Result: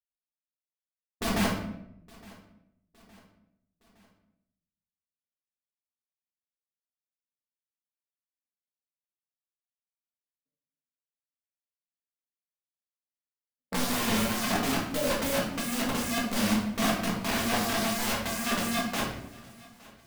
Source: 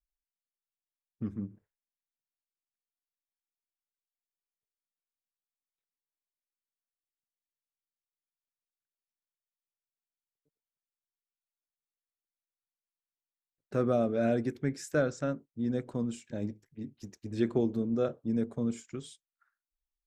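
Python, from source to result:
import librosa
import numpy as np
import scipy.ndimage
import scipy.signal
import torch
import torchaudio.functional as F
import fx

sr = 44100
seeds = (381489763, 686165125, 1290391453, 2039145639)

p1 = fx.double_bandpass(x, sr, hz=370.0, octaves=1.2)
p2 = fx.tilt_eq(p1, sr, slope=-3.0)
p3 = fx.leveller(p2, sr, passes=5)
p4 = fx.rider(p3, sr, range_db=3, speed_s=0.5)
p5 = (np.mod(10.0 ** (26.5 / 20.0) * p4 + 1.0, 2.0) - 1.0) / 10.0 ** (26.5 / 20.0)
p6 = p5 + fx.echo_feedback(p5, sr, ms=864, feedback_pct=48, wet_db=-23.0, dry=0)
y = fx.room_shoebox(p6, sr, seeds[0], volume_m3=200.0, walls='mixed', distance_m=1.6)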